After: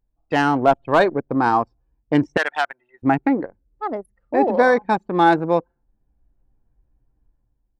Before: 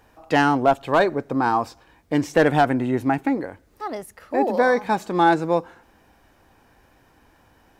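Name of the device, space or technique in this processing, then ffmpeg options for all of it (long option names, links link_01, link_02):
voice memo with heavy noise removal: -filter_complex "[0:a]asettb=1/sr,asplit=3[link_01][link_02][link_03];[link_01]atrim=end=2.374[link_04];[link_02]atrim=start=2.37:end=3.03,asetpts=PTS-STARTPTS,afade=type=in:duration=0.004:curve=qsin,afade=type=out:start_time=0.656:duration=0.004:curve=qsin,highpass=1200[link_05];[link_03]atrim=start=3.026[link_06];[link_04][link_05]acrossfade=duration=0.004:curve1=hsin:curve2=qsin[link_07];[link_07][link_06]acrossfade=duration=0.004:curve1=qsin:curve2=hsin,anlmdn=158,dynaudnorm=framelen=140:gausssize=7:maxgain=9dB,volume=-2.5dB"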